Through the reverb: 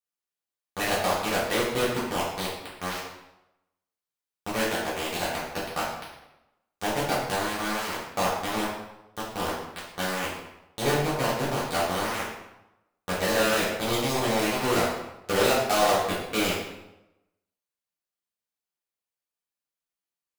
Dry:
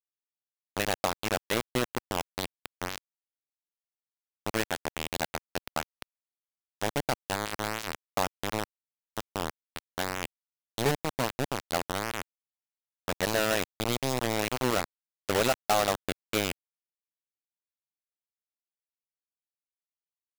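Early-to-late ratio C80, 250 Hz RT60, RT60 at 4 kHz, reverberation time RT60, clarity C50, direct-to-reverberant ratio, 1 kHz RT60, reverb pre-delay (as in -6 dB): 4.5 dB, 0.90 s, 0.70 s, 0.90 s, 1.5 dB, -8.5 dB, 0.90 s, 3 ms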